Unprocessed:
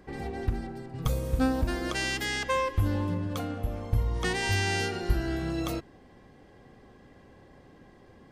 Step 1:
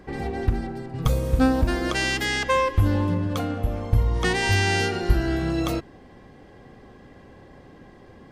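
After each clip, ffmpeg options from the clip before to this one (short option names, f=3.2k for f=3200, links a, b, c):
-af "highshelf=f=6.4k:g=-4.5,volume=6.5dB"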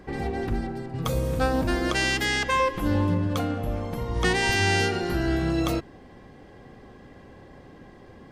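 -af "afftfilt=real='re*lt(hypot(re,im),0.891)':imag='im*lt(hypot(re,im),0.891)':win_size=1024:overlap=0.75"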